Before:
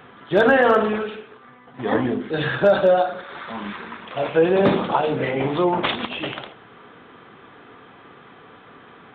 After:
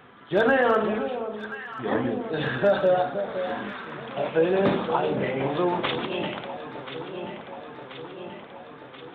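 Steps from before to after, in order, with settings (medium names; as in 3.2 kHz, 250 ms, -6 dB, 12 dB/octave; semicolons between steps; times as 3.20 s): echo whose repeats swap between lows and highs 516 ms, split 990 Hz, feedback 80%, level -9 dB; trim -5 dB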